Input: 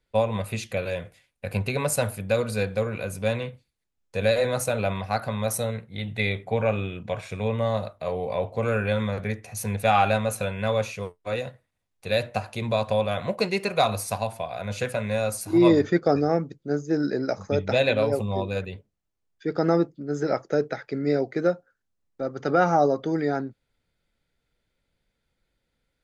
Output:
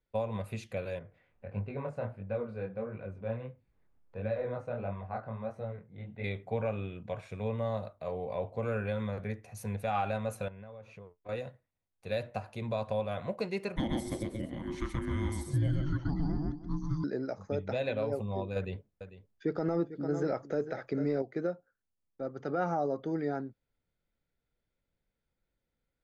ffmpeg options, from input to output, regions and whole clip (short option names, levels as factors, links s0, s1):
-filter_complex "[0:a]asettb=1/sr,asplit=3[s0][s1][s2];[s0]atrim=end=0.994[s3];[s1]atrim=start=0.99:end=6.24,asetpts=PTS-STARTPTS,afade=t=in:d=0.004:c=qsin,afade=t=out:st=5.246:d=0.004:c=qsin,lowpass=1800,acompressor=mode=upward:threshold=0.00891:ratio=2.5:attack=3.2:release=140:knee=2.83:detection=peak,flanger=delay=19:depth=7.8:speed=1.5[s4];[s2]atrim=start=6.236[s5];[s3][s4]acrossfade=d=0.004:c1=hsin:c2=qsin[s6];[s6][s5]acrossfade=d=0.004:c1=qsin:c2=hsin,asettb=1/sr,asplit=3[s7][s8][s9];[s7]atrim=end=10.484[s10];[s8]atrim=start=10.48:end=11.29,asetpts=PTS-STARTPTS,afade=t=in:d=0.004:c=qsin,afade=t=out:st=0.806:d=0.004:c=qsin,lowpass=f=1700:p=1,acompressor=threshold=0.0141:ratio=6:attack=3.2:release=140:knee=1:detection=peak[s11];[s9]atrim=start=11.286[s12];[s10][s11]acrossfade=d=0.004:c1=hsin:c2=qsin[s13];[s13][s12]acrossfade=d=0.004:c1=qsin:c2=hsin,asettb=1/sr,asplit=3[s14][s15][s16];[s14]atrim=end=13.764[s17];[s15]atrim=start=13.76:end=17.04,asetpts=PTS-STARTPTS,afade=t=in:d=0.004:c=qsin,afade=t=out:st=3.276:d=0.004:c=qsin,afreqshift=-460,aecho=1:1:128|317:0.668|0.126,atrim=end_sample=144648[s18];[s16]atrim=start=17.036[s19];[s17][s18]acrossfade=d=0.004:c1=hsin:c2=qsin[s20];[s20][s19]acrossfade=d=0.004:c1=qsin:c2=hsin,asettb=1/sr,asplit=3[s21][s22][s23];[s21]atrim=end=18.564[s24];[s22]atrim=start=18.56:end=21.22,asetpts=PTS-STARTPTS,afade=t=in:d=0.004:c=qsin,afade=t=out:st=2.656:d=0.004:c=qsin,aecho=1:1:447:0.178,atrim=end_sample=117306,acontrast=66[s25];[s23]atrim=start=21.216[s26];[s24][s25]acrossfade=d=0.004:c1=hsin:c2=qsin[s27];[s27][s26]acrossfade=d=0.004:c1=qsin:c2=hsin,highshelf=f=2200:g=-8.5,alimiter=limit=0.188:level=0:latency=1:release=144,volume=0.422"